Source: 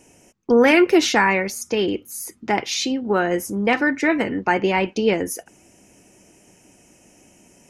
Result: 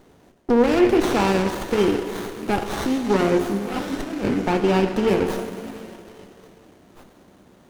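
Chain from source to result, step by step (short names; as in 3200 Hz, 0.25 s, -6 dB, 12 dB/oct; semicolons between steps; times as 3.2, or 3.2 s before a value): limiter -11 dBFS, peak gain reduction 7 dB; 3.54–4.34 negative-ratio compressor -26 dBFS, ratio -0.5; delay with a stepping band-pass 0.558 s, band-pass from 1500 Hz, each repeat 1.4 oct, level -8.5 dB; plate-style reverb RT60 2.7 s, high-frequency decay 0.95×, DRR 5 dB; running maximum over 17 samples; gain +1 dB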